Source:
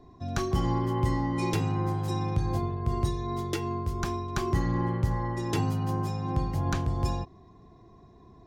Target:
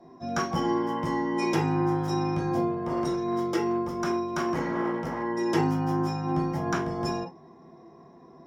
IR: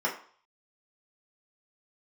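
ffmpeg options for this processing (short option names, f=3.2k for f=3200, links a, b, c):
-filter_complex "[0:a]asplit=3[a][b][c];[a]afade=t=out:st=2.73:d=0.02[d];[b]asoftclip=type=hard:threshold=-25dB,afade=t=in:st=2.73:d=0.02,afade=t=out:st=5.22:d=0.02[e];[c]afade=t=in:st=5.22:d=0.02[f];[d][e][f]amix=inputs=3:normalize=0[g];[1:a]atrim=start_sample=2205,atrim=end_sample=3528[h];[g][h]afir=irnorm=-1:irlink=0,volume=-3.5dB"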